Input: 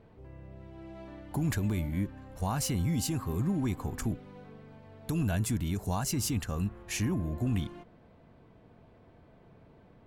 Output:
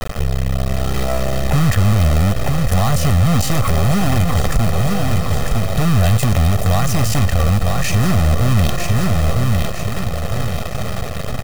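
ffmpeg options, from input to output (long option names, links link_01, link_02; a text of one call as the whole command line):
ffmpeg -i in.wav -filter_complex "[0:a]adynamicequalizer=threshold=0.00708:dfrequency=140:dqfactor=0.96:tfrequency=140:tqfactor=0.96:attack=5:release=100:ratio=0.375:range=1.5:mode=cutabove:tftype=bell,asplit=2[link_01][link_02];[link_02]acompressor=threshold=-41dB:ratio=16,volume=-0.5dB[link_03];[link_01][link_03]amix=inputs=2:normalize=0,atempo=0.88,acontrast=84,lowpass=frequency=3100:poles=1,lowshelf=frequency=110:gain=9,acrusher=bits=4:dc=4:mix=0:aa=0.000001,asoftclip=type=hard:threshold=-19.5dB,aecho=1:1:1.6:0.71,asplit=2[link_04][link_05];[link_05]aecho=0:1:955|1910|2865|3820:0.316|0.117|0.0433|0.016[link_06];[link_04][link_06]amix=inputs=2:normalize=0,alimiter=level_in=23dB:limit=-1dB:release=50:level=0:latency=1,volume=-6.5dB" out.wav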